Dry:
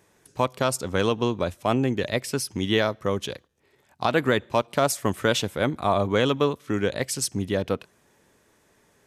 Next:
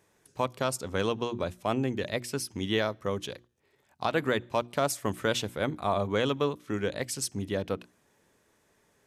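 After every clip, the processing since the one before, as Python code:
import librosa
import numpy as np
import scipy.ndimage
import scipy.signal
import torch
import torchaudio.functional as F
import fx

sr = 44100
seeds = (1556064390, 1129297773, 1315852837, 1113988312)

y = fx.hum_notches(x, sr, base_hz=60, count=6)
y = y * librosa.db_to_amplitude(-5.5)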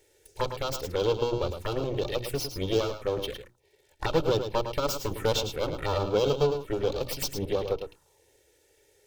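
y = fx.lower_of_two(x, sr, delay_ms=2.2)
y = fx.env_phaser(y, sr, low_hz=180.0, high_hz=1900.0, full_db=-31.5)
y = y + 10.0 ** (-8.5 / 20.0) * np.pad(y, (int(107 * sr / 1000.0), 0))[:len(y)]
y = y * librosa.db_to_amplitude(6.5)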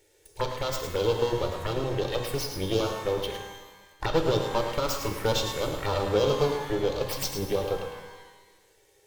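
y = fx.rev_shimmer(x, sr, seeds[0], rt60_s=1.2, semitones=12, shimmer_db=-8, drr_db=6.0)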